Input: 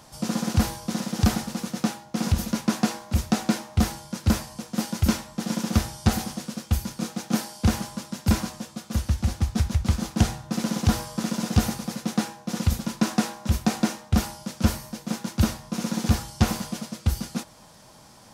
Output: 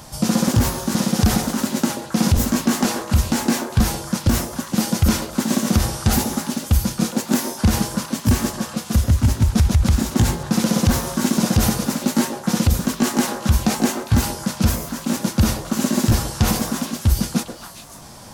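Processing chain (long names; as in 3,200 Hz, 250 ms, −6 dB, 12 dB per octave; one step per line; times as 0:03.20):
pitch shifter gated in a rhythm +2 semitones, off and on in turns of 474 ms
low-shelf EQ 140 Hz +7.5 dB
brickwall limiter −15.5 dBFS, peak gain reduction 12 dB
high-shelf EQ 8,600 Hz +6 dB
echo through a band-pass that steps 135 ms, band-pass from 480 Hz, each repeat 1.4 octaves, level −2 dB
level +8 dB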